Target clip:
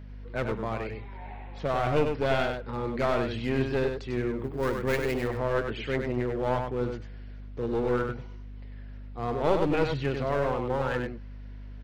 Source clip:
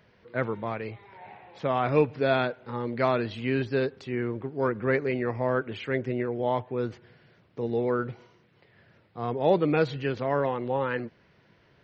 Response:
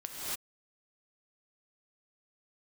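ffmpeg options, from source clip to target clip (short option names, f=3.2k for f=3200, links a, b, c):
-filter_complex "[0:a]aeval=exprs='clip(val(0),-1,0.0376)':c=same,aeval=exprs='val(0)+0.00794*(sin(2*PI*50*n/s)+sin(2*PI*2*50*n/s)/2+sin(2*PI*3*50*n/s)/3+sin(2*PI*4*50*n/s)/4+sin(2*PI*5*50*n/s)/5)':c=same,asettb=1/sr,asplit=3[a][b][c];[a]atrim=end=4.384[d];[b]atrim=start=4.38:end=5.28,asetpts=PTS-STARTPTS,afade=t=in:d=0.004:c=qsin,afade=t=out:st=0.896:d=0.004:c=qsin,aemphasis=mode=production:type=50fm[e];[c]atrim=start=5.276[f];[d][e]acrossfade=d=0.004:c1=hsin:c2=qsin[g];[g][f]acrossfade=d=0.004:c1=qsin:c2=hsin,asplit=2[h][i];[i]aecho=0:1:97:0.531[j];[h][j]amix=inputs=2:normalize=0"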